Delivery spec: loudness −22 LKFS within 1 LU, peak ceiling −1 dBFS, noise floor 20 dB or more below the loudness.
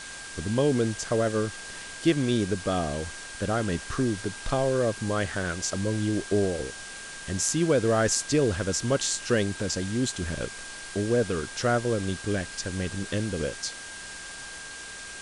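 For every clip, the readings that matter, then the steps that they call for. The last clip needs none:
interfering tone 1,600 Hz; level of the tone −42 dBFS; background noise floor −41 dBFS; target noise floor −48 dBFS; integrated loudness −27.5 LKFS; sample peak −7.5 dBFS; target loudness −22.0 LKFS
→ notch filter 1,600 Hz, Q 30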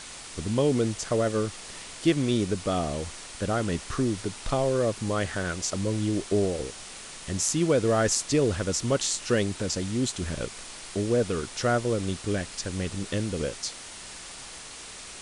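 interfering tone none found; background noise floor −43 dBFS; target noise floor −48 dBFS
→ broadband denoise 6 dB, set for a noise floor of −43 dBFS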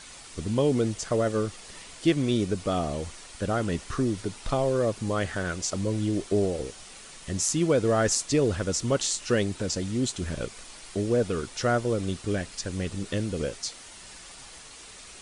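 background noise floor −46 dBFS; target noise floor −48 dBFS
→ broadband denoise 6 dB, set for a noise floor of −46 dBFS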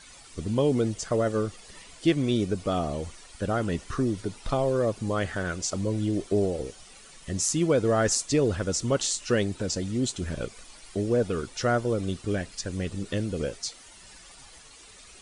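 background noise floor −50 dBFS; integrated loudness −27.5 LKFS; sample peak −7.5 dBFS; target loudness −22.0 LKFS
→ level +5.5 dB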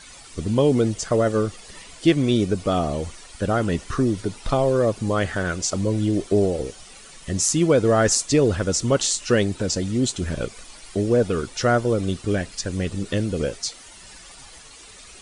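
integrated loudness −22.0 LKFS; sample peak −2.0 dBFS; background noise floor −45 dBFS

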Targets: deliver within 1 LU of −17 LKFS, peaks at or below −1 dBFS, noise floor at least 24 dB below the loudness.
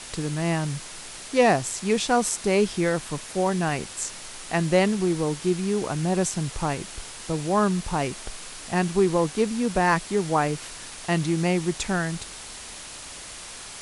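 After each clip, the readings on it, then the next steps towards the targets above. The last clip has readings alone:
background noise floor −40 dBFS; target noise floor −49 dBFS; integrated loudness −25.0 LKFS; sample peak −6.5 dBFS; target loudness −17.0 LKFS
→ noise reduction from a noise print 9 dB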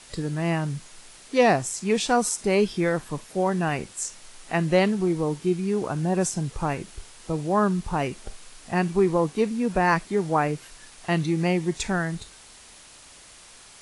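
background noise floor −49 dBFS; integrated loudness −25.0 LKFS; sample peak −7.0 dBFS; target loudness −17.0 LKFS
→ level +8 dB
brickwall limiter −1 dBFS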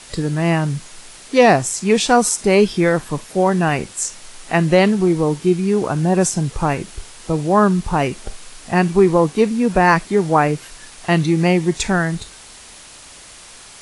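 integrated loudness −17.0 LKFS; sample peak −1.0 dBFS; background noise floor −41 dBFS

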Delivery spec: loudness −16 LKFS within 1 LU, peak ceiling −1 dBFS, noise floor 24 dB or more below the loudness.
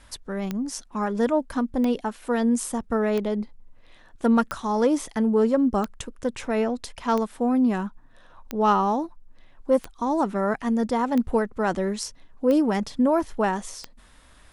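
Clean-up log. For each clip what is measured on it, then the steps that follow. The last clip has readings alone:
number of clicks 11; integrated loudness −24.5 LKFS; sample peak −8.5 dBFS; target loudness −16.0 LKFS
→ click removal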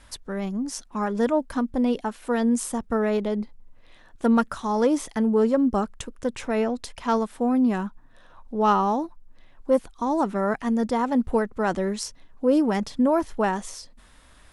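number of clicks 0; integrated loudness −24.5 LKFS; sample peak −8.5 dBFS; target loudness −16.0 LKFS
→ level +8.5 dB
brickwall limiter −1 dBFS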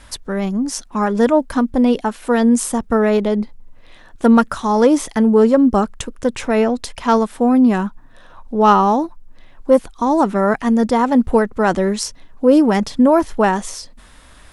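integrated loudness −16.0 LKFS; sample peak −1.0 dBFS; background noise floor −44 dBFS

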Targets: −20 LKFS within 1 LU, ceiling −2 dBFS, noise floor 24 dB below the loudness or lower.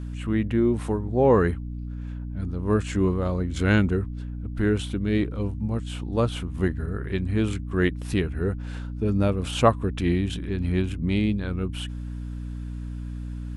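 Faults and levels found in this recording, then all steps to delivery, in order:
mains hum 60 Hz; hum harmonics up to 300 Hz; level of the hum −30 dBFS; integrated loudness −26.0 LKFS; sample peak −4.5 dBFS; target loudness −20.0 LKFS
→ mains-hum notches 60/120/180/240/300 Hz
level +6 dB
brickwall limiter −2 dBFS

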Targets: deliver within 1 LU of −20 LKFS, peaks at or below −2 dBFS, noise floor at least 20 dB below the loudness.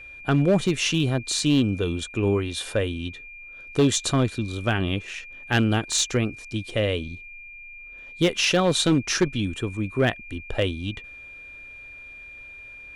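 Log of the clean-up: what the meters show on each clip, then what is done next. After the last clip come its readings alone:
share of clipped samples 0.6%; peaks flattened at −13.0 dBFS; interfering tone 2,400 Hz; level of the tone −40 dBFS; integrated loudness −24.0 LKFS; sample peak −13.0 dBFS; target loudness −20.0 LKFS
→ clipped peaks rebuilt −13 dBFS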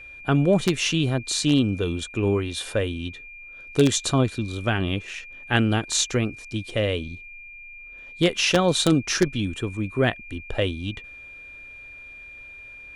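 share of clipped samples 0.0%; interfering tone 2,400 Hz; level of the tone −40 dBFS
→ notch filter 2,400 Hz, Q 30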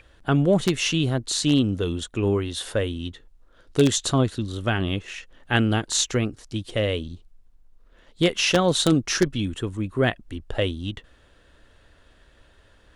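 interfering tone none found; integrated loudness −23.5 LKFS; sample peak −4.0 dBFS; target loudness −20.0 LKFS
→ level +3.5 dB
brickwall limiter −2 dBFS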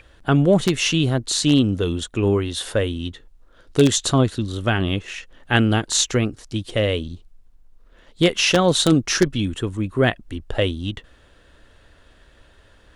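integrated loudness −20.0 LKFS; sample peak −2.0 dBFS; background noise floor −53 dBFS

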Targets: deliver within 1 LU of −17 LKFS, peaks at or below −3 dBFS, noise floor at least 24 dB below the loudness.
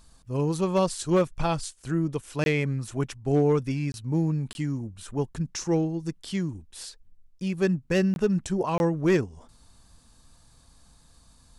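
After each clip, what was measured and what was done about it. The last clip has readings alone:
share of clipped samples 0.3%; peaks flattened at −15.0 dBFS; number of dropouts 5; longest dropout 21 ms; integrated loudness −27.0 LKFS; sample peak −15.0 dBFS; target loudness −17.0 LKFS
→ clipped peaks rebuilt −15 dBFS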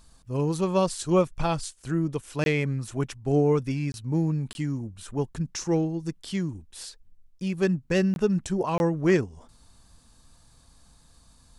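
share of clipped samples 0.0%; number of dropouts 5; longest dropout 21 ms
→ repair the gap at 0:02.44/0:03.92/0:04.53/0:08.14/0:08.78, 21 ms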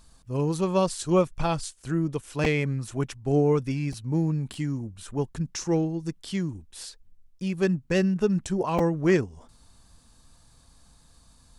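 number of dropouts 0; integrated loudness −27.0 LKFS; sample peak −9.5 dBFS; target loudness −17.0 LKFS
→ level +10 dB
brickwall limiter −3 dBFS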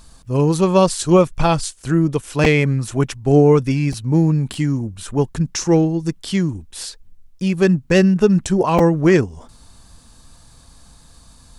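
integrated loudness −17.0 LKFS; sample peak −3.0 dBFS; background noise floor −48 dBFS

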